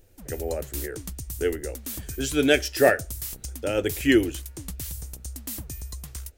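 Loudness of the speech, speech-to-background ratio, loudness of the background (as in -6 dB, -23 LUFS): -25.0 LUFS, 11.0 dB, -36.0 LUFS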